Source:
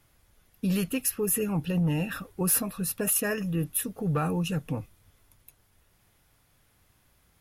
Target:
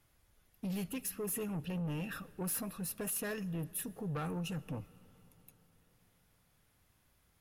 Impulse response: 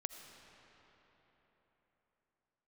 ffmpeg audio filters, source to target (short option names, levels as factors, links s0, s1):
-filter_complex "[0:a]asoftclip=type=tanh:threshold=0.0447,asplit=2[s0][s1];[1:a]atrim=start_sample=2205[s2];[s1][s2]afir=irnorm=-1:irlink=0,volume=0.316[s3];[s0][s3]amix=inputs=2:normalize=0,volume=0.376"